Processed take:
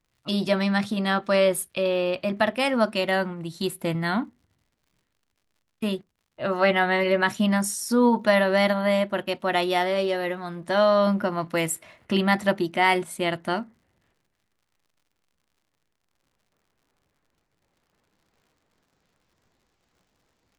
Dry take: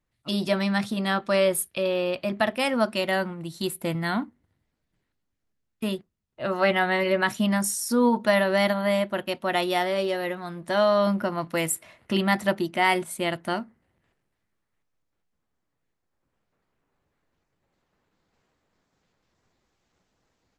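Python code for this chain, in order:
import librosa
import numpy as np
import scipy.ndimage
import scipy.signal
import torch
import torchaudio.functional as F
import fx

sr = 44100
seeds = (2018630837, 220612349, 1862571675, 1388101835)

y = fx.dmg_crackle(x, sr, seeds[0], per_s=95.0, level_db=-55.0)
y = fx.high_shelf(y, sr, hz=9200.0, db=-7.0)
y = y * 10.0 ** (1.5 / 20.0)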